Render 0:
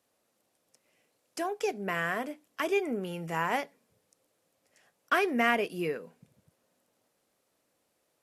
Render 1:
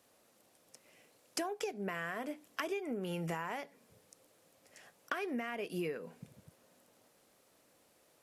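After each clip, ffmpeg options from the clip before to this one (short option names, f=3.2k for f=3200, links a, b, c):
-af "alimiter=limit=-22dB:level=0:latency=1:release=377,acompressor=threshold=-41dB:ratio=20,volume=7dB"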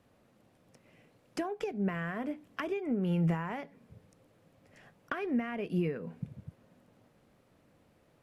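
-af "bass=f=250:g=14,treble=f=4k:g=-13,volume=1dB"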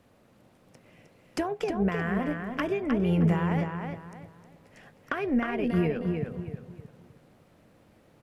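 -filter_complex "[0:a]asplit=2[a][b];[b]adelay=311,lowpass=f=4.5k:p=1,volume=-5dB,asplit=2[c][d];[d]adelay=311,lowpass=f=4.5k:p=1,volume=0.31,asplit=2[e][f];[f]adelay=311,lowpass=f=4.5k:p=1,volume=0.31,asplit=2[g][h];[h]adelay=311,lowpass=f=4.5k:p=1,volume=0.31[i];[c][e][g][i]amix=inputs=4:normalize=0[j];[a][j]amix=inputs=2:normalize=0,tremolo=f=260:d=0.4,volume=7dB"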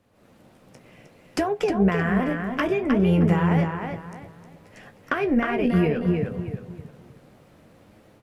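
-af "dynaudnorm=f=120:g=3:m=10dB,flanger=delay=9.4:depth=6.4:regen=-44:speed=0.62:shape=sinusoidal"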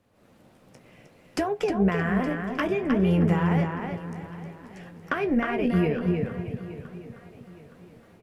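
-af "aecho=1:1:868|1736|2604:0.141|0.0523|0.0193,volume=-2.5dB"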